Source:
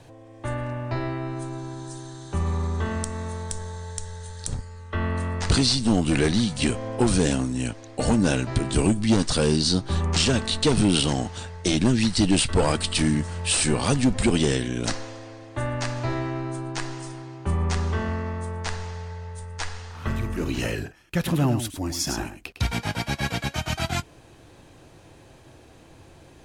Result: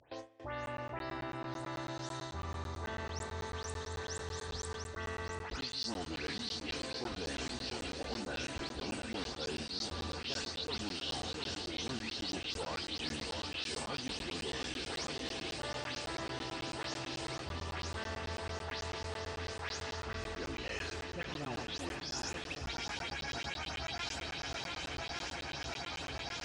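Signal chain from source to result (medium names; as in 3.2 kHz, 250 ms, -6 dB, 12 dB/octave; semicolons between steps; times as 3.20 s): delay that grows with frequency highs late, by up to 188 ms; in parallel at +0.5 dB: upward compressor, threshold -24 dBFS; on the sum: four-pole ladder low-pass 6.5 kHz, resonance 25%; echo that smears into a reverb 505 ms, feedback 48%, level -12 dB; gate with hold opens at -30 dBFS; high-pass 54 Hz 24 dB/octave; peaking EQ 170 Hz -14 dB 1.9 oct; shuffle delay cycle 1164 ms, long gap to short 1.5:1, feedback 68%, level -9 dB; reverse; compression 6:1, threshold -38 dBFS, peak gain reduction 19 dB; reverse; crackling interface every 0.11 s, samples 512, zero, from 0.66 s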